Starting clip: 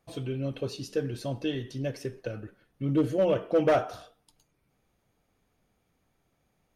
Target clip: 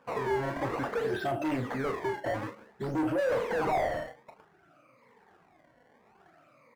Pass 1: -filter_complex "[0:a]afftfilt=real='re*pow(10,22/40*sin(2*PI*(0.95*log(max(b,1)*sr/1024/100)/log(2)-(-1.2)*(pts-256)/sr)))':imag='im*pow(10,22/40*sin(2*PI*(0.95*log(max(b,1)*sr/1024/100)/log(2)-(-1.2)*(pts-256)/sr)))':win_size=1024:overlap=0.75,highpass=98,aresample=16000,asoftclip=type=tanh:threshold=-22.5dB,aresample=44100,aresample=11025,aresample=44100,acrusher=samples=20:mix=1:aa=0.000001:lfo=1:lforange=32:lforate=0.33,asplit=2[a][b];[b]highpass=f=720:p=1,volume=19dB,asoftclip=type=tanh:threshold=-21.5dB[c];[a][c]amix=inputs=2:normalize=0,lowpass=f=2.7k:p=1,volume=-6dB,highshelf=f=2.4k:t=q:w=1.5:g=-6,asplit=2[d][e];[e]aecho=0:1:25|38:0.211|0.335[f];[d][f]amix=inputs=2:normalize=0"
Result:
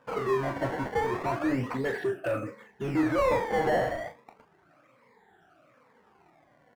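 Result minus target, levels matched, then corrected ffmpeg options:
decimation with a swept rate: distortion +4 dB; soft clip: distortion -4 dB
-filter_complex "[0:a]afftfilt=real='re*pow(10,22/40*sin(2*PI*(0.95*log(max(b,1)*sr/1024/100)/log(2)-(-1.2)*(pts-256)/sr)))':imag='im*pow(10,22/40*sin(2*PI*(0.95*log(max(b,1)*sr/1024/100)/log(2)-(-1.2)*(pts-256)/sr)))':win_size=1024:overlap=0.75,highpass=98,aresample=16000,asoftclip=type=tanh:threshold=-30dB,aresample=44100,aresample=11025,aresample=44100,acrusher=samples=20:mix=1:aa=0.000001:lfo=1:lforange=32:lforate=0.56,asplit=2[a][b];[b]highpass=f=720:p=1,volume=19dB,asoftclip=type=tanh:threshold=-21.5dB[c];[a][c]amix=inputs=2:normalize=0,lowpass=f=2.7k:p=1,volume=-6dB,highshelf=f=2.4k:t=q:w=1.5:g=-6,asplit=2[d][e];[e]aecho=0:1:25|38:0.211|0.335[f];[d][f]amix=inputs=2:normalize=0"

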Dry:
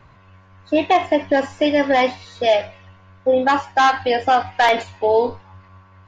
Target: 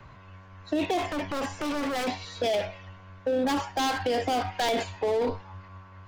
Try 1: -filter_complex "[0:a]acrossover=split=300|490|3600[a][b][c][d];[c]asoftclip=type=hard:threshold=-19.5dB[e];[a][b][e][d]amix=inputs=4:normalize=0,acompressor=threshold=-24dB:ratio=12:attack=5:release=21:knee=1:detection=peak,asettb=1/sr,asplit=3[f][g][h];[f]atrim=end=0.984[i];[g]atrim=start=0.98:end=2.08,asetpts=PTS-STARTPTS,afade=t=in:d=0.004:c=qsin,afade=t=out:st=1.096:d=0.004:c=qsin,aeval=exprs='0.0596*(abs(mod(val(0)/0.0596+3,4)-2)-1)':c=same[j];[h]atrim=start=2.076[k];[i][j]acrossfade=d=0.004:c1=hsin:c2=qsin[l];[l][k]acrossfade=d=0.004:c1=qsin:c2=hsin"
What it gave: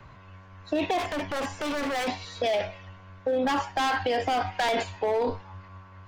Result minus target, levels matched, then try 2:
hard clip: distortion -5 dB
-filter_complex "[0:a]acrossover=split=300|490|3600[a][b][c][d];[c]asoftclip=type=hard:threshold=-30.5dB[e];[a][b][e][d]amix=inputs=4:normalize=0,acompressor=threshold=-24dB:ratio=12:attack=5:release=21:knee=1:detection=peak,asettb=1/sr,asplit=3[f][g][h];[f]atrim=end=0.984[i];[g]atrim=start=0.98:end=2.08,asetpts=PTS-STARTPTS,afade=t=in:d=0.004:c=qsin,afade=t=out:st=1.096:d=0.004:c=qsin,aeval=exprs='0.0596*(abs(mod(val(0)/0.0596+3,4)-2)-1)':c=same[j];[h]atrim=start=2.076[k];[i][j]acrossfade=d=0.004:c1=hsin:c2=qsin[l];[l][k]acrossfade=d=0.004:c1=qsin:c2=hsin"

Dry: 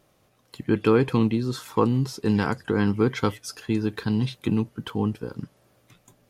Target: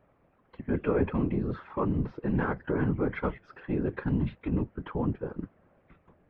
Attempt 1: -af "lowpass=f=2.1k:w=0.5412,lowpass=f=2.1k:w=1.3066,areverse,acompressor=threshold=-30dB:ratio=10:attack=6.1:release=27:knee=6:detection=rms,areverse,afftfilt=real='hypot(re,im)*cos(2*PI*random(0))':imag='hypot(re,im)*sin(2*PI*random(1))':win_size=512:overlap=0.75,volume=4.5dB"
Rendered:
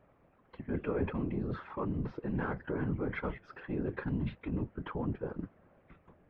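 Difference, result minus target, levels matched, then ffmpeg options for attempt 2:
compressor: peak gain reduction +7 dB
-af "lowpass=f=2.1k:w=0.5412,lowpass=f=2.1k:w=1.3066,areverse,acompressor=threshold=-22dB:ratio=10:attack=6.1:release=27:knee=6:detection=rms,areverse,afftfilt=real='hypot(re,im)*cos(2*PI*random(0))':imag='hypot(re,im)*sin(2*PI*random(1))':win_size=512:overlap=0.75,volume=4.5dB"

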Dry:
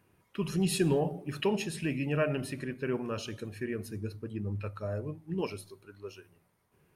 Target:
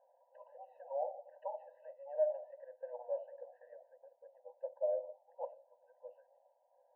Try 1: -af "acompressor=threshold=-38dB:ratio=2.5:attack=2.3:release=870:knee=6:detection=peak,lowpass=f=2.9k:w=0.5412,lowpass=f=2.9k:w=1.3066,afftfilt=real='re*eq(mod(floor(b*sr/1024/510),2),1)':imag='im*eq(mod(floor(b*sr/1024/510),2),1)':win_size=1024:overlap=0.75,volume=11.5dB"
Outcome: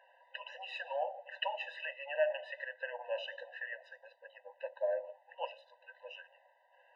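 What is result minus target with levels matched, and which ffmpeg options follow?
1000 Hz band +3.5 dB
-af "acompressor=threshold=-38dB:ratio=2.5:attack=2.3:release=870:knee=6:detection=peak,lowpass=f=730:w=0.5412,lowpass=f=730:w=1.3066,afftfilt=real='re*eq(mod(floor(b*sr/1024/510),2),1)':imag='im*eq(mod(floor(b*sr/1024/510),2),1)':win_size=1024:overlap=0.75,volume=11.5dB"

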